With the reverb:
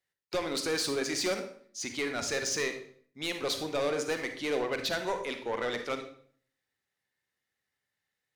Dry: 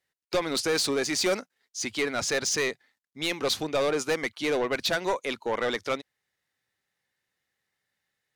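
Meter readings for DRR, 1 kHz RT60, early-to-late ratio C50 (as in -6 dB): 6.0 dB, 0.50 s, 8.0 dB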